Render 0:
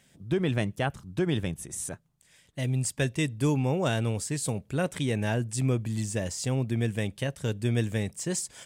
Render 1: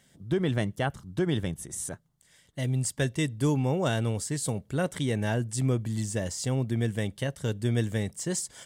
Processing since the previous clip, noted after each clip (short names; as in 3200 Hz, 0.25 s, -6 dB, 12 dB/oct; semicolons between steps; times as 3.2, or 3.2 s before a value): notch 2500 Hz, Q 6.8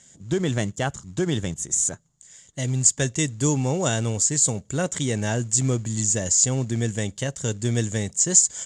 in parallel at -8 dB: short-mantissa float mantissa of 2-bit; on the sum: synth low-pass 7000 Hz, resonance Q 11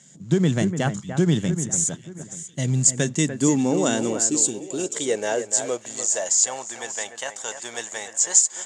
spectral gain 4.26–4.95, 420–2300 Hz -16 dB; echo with dull and thin repeats by turns 0.294 s, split 2300 Hz, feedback 55%, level -9 dB; high-pass sweep 160 Hz -> 840 Hz, 2.74–6.66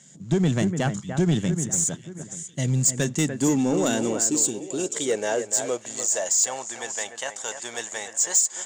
soft clip -13 dBFS, distortion -15 dB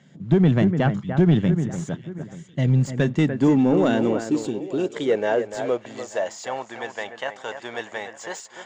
air absorption 340 m; gain +5 dB